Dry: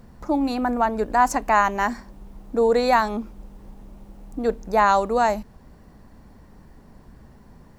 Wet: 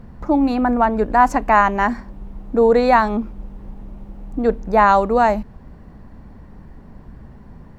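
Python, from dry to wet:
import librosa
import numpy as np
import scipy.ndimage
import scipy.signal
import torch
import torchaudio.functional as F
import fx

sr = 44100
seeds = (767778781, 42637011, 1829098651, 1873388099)

y = fx.bass_treble(x, sr, bass_db=4, treble_db=-12)
y = y * librosa.db_to_amplitude(4.5)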